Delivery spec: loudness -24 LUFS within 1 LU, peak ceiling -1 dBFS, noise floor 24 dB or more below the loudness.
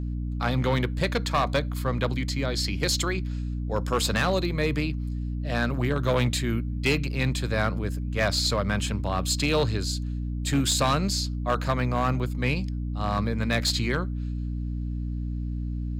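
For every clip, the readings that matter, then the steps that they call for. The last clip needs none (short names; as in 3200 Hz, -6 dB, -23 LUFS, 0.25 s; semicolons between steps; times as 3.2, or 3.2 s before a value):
clipped 0.8%; flat tops at -16.5 dBFS; hum 60 Hz; harmonics up to 300 Hz; hum level -27 dBFS; loudness -26.5 LUFS; peak -16.5 dBFS; loudness target -24.0 LUFS
-> clip repair -16.5 dBFS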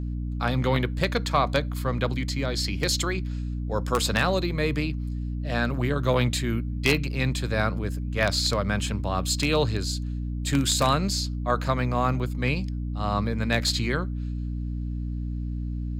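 clipped 0.0%; hum 60 Hz; harmonics up to 300 Hz; hum level -27 dBFS
-> de-hum 60 Hz, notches 5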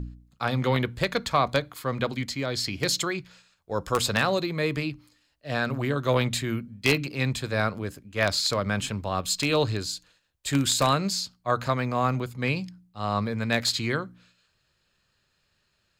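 hum none; loudness -27.0 LUFS; peak -7.0 dBFS; loudness target -24.0 LUFS
-> gain +3 dB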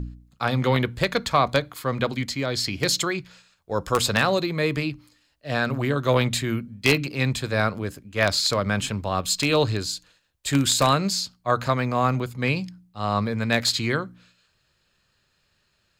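loudness -24.0 LUFS; peak -4.0 dBFS; noise floor -69 dBFS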